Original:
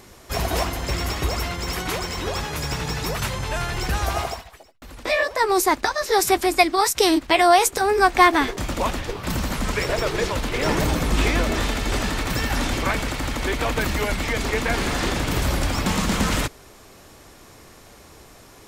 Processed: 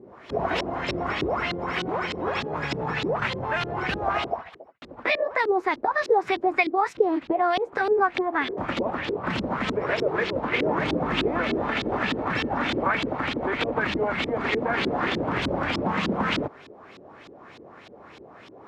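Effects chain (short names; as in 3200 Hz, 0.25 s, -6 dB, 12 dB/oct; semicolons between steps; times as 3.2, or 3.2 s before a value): HPF 150 Hz 12 dB/oct; compressor 4:1, threshold -23 dBFS, peak gain reduction 12.5 dB; LFO low-pass saw up 3.3 Hz 310–3900 Hz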